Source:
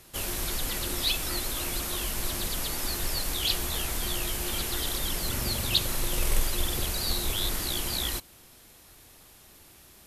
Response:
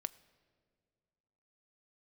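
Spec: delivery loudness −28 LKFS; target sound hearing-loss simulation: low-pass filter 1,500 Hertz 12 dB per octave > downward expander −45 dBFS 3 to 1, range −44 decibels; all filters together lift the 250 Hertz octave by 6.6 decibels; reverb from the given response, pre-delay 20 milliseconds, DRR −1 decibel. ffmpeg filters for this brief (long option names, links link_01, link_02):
-filter_complex "[0:a]equalizer=frequency=250:width_type=o:gain=9,asplit=2[link_01][link_02];[1:a]atrim=start_sample=2205,adelay=20[link_03];[link_02][link_03]afir=irnorm=-1:irlink=0,volume=3dB[link_04];[link_01][link_04]amix=inputs=2:normalize=0,lowpass=1500,agate=range=-44dB:threshold=-45dB:ratio=3,volume=2.5dB"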